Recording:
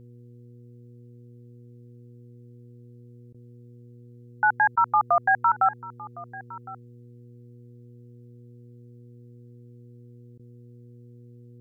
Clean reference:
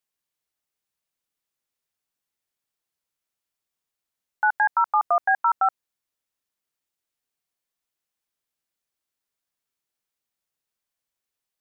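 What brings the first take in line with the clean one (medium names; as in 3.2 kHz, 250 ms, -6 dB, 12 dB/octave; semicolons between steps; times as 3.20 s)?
de-hum 120.4 Hz, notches 4; interpolate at 3.33/4.76/10.38 s, 12 ms; inverse comb 1060 ms -19 dB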